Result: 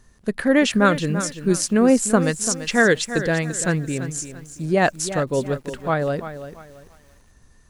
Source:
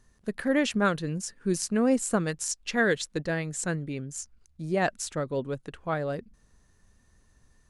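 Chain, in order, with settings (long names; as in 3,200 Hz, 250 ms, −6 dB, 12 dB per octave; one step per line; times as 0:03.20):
feedback echo at a low word length 339 ms, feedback 35%, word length 9 bits, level −11.5 dB
level +8 dB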